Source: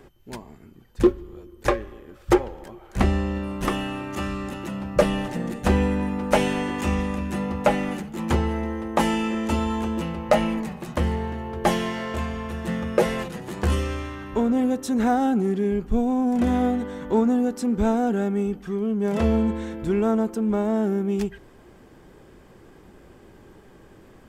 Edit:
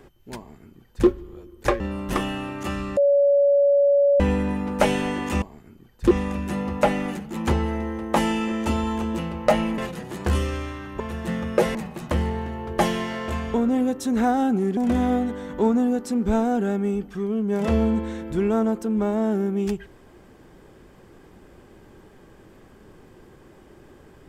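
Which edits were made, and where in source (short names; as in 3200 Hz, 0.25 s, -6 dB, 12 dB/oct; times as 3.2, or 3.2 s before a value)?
0.38–1.07 copy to 6.94
1.8–3.32 cut
4.49–5.72 bleep 566 Hz -14 dBFS
10.61–12.4 swap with 13.15–14.37
15.6–16.29 cut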